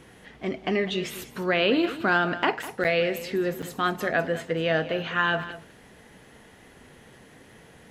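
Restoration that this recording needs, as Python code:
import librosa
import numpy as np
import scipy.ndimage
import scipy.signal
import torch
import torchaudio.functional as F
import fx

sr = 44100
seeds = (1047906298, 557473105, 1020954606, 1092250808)

y = fx.fix_interpolate(x, sr, at_s=(2.84, 3.62), length_ms=7.1)
y = fx.fix_echo_inverse(y, sr, delay_ms=201, level_db=-14.5)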